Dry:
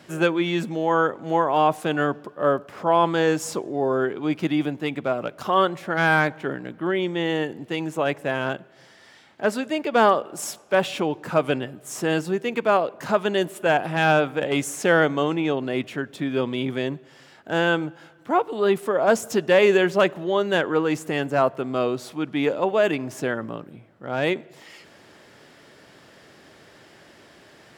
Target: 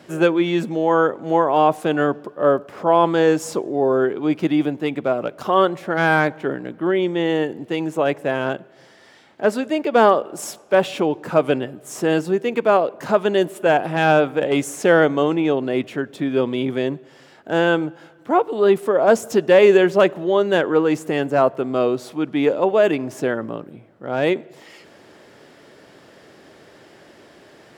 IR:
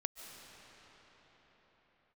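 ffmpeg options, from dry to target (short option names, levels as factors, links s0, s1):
-af "equalizer=f=420:t=o:w=2.1:g=5.5"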